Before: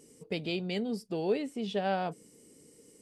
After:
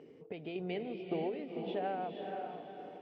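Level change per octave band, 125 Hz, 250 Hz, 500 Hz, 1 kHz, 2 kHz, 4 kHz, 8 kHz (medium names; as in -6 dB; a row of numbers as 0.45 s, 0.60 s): -7.0 dB, -6.0 dB, -4.5 dB, -3.0 dB, -8.0 dB, -11.0 dB, under -25 dB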